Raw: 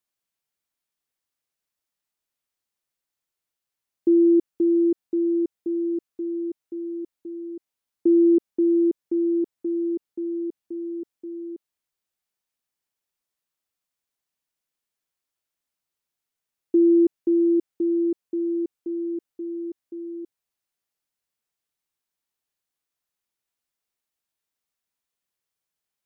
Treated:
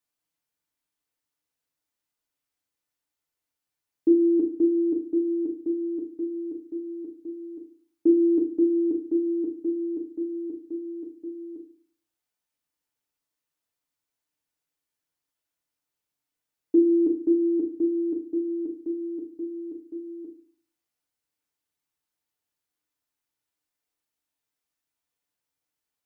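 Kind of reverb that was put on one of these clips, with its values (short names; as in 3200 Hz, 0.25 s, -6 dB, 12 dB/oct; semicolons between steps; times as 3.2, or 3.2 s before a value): FDN reverb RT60 0.45 s, low-frequency decay 1.25×, high-frequency decay 0.55×, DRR 1 dB; gain -2.5 dB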